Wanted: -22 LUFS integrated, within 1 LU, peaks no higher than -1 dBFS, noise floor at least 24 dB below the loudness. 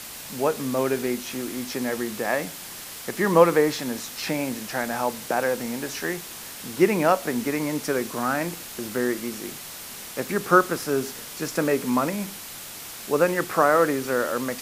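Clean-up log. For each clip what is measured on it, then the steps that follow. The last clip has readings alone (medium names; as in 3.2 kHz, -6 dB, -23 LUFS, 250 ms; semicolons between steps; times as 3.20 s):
noise floor -39 dBFS; noise floor target -49 dBFS; loudness -25.0 LUFS; peak level -2.5 dBFS; loudness target -22.0 LUFS
-> noise reduction 10 dB, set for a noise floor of -39 dBFS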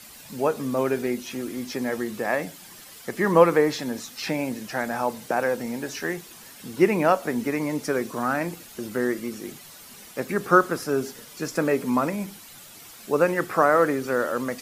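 noise floor -46 dBFS; noise floor target -49 dBFS
-> noise reduction 6 dB, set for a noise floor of -46 dBFS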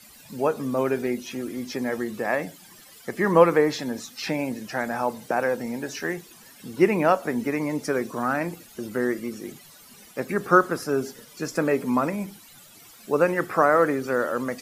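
noise floor -50 dBFS; loudness -25.0 LUFS; peak level -2.5 dBFS; loudness target -22.0 LUFS
-> trim +3 dB; peak limiter -1 dBFS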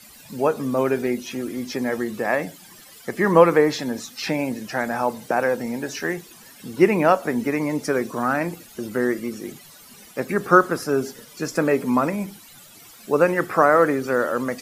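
loudness -22.0 LUFS; peak level -1.0 dBFS; noise floor -47 dBFS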